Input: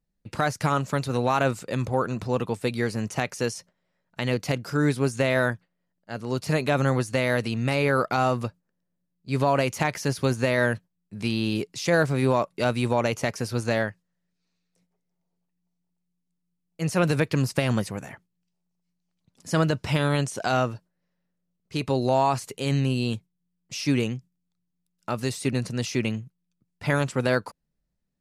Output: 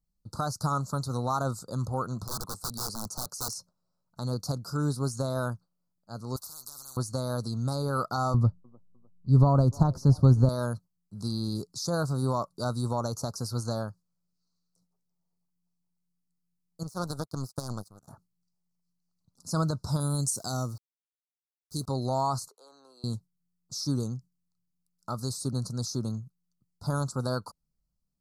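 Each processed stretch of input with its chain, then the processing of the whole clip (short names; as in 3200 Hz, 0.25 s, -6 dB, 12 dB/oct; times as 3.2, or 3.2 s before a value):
2.25–3.56 low shelf 100 Hz -11.5 dB + notch 3700 Hz, Q 17 + wrapped overs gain 24 dB
6.36–6.97 pre-emphasis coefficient 0.8 + spectral compressor 10:1
8.34–10.49 tilt -4 dB/oct + band-limited delay 0.303 s, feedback 38%, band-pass 520 Hz, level -21.5 dB
16.83–18.08 high shelf 10000 Hz +3 dB + power-law curve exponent 2
20–21.87 EQ curve 320 Hz 0 dB, 620 Hz -5 dB, 1600 Hz -9 dB, 4100 Hz 0 dB, 9100 Hz +10 dB + sample gate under -46.5 dBFS
22.48–23.04 HPF 310 Hz 24 dB/oct + three-band isolator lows -21 dB, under 580 Hz, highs -17 dB, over 2900 Hz + compressor 2:1, threshold -45 dBFS
whole clip: elliptic band-stop 1300–4300 Hz, stop band 40 dB; bell 420 Hz -9.5 dB 2.2 oct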